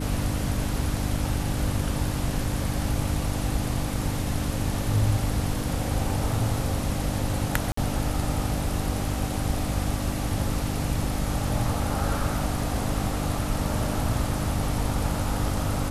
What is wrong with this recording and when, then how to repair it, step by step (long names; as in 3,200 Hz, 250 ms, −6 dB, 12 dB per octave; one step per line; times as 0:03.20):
mains hum 50 Hz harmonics 6 −31 dBFS
0:07.72–0:07.77: drop-out 54 ms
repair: hum removal 50 Hz, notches 6
repair the gap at 0:07.72, 54 ms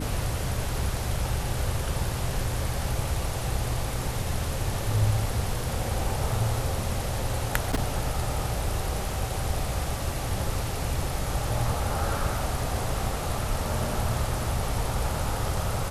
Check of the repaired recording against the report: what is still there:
none of them is left